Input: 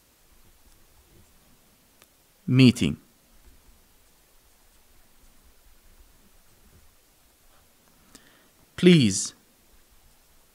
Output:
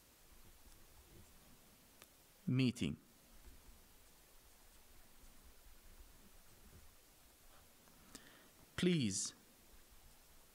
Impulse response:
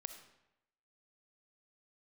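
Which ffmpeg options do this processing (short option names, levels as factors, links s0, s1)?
-af "acompressor=threshold=0.0224:ratio=2.5,volume=0.501"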